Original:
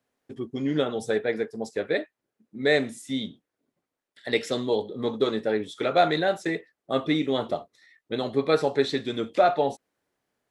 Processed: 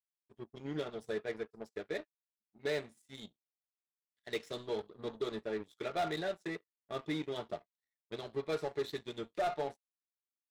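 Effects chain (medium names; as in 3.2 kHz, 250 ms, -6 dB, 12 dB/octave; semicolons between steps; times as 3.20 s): comb of notches 260 Hz; saturation -22 dBFS, distortion -10 dB; power-law waveshaper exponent 2; trim -6 dB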